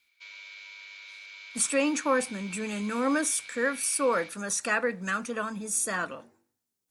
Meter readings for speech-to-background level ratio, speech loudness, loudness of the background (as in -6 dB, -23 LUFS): 15.0 dB, -28.5 LUFS, -43.5 LUFS